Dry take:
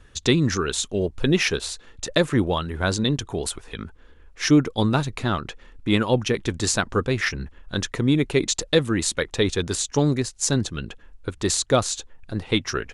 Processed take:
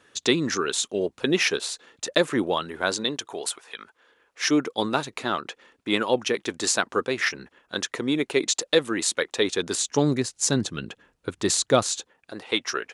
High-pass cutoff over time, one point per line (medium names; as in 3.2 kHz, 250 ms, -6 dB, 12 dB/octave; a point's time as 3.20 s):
2.63 s 280 Hz
3.82 s 740 Hz
4.66 s 330 Hz
9.39 s 330 Hz
10.17 s 150 Hz
11.86 s 150 Hz
12.36 s 430 Hz